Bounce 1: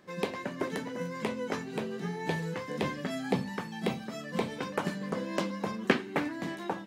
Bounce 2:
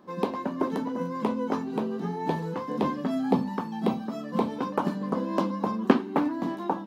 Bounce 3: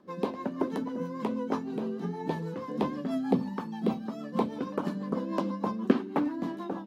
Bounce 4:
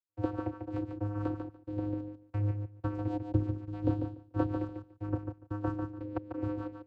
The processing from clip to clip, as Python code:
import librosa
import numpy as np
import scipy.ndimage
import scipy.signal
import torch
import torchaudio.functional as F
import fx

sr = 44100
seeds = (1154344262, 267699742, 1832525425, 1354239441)

y1 = fx.graphic_eq_10(x, sr, hz=(125, 250, 1000, 2000, 8000), db=(-4, 10, 10, -9, -8))
y2 = fx.rotary(y1, sr, hz=6.3)
y2 = F.gain(torch.from_numpy(y2), -1.5).numpy()
y3 = fx.step_gate(y2, sr, bpm=90, pattern='.xx.x.xx..xx..x.', floor_db=-60.0, edge_ms=4.5)
y3 = fx.echo_feedback(y3, sr, ms=145, feedback_pct=16, wet_db=-6.5)
y3 = fx.vocoder(y3, sr, bands=8, carrier='square', carrier_hz=103.0)